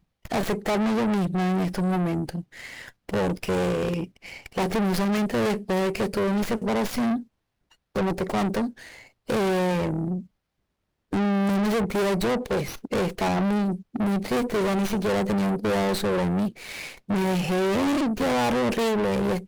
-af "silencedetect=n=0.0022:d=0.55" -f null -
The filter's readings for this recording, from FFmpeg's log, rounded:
silence_start: 10.27
silence_end: 11.12 | silence_duration: 0.85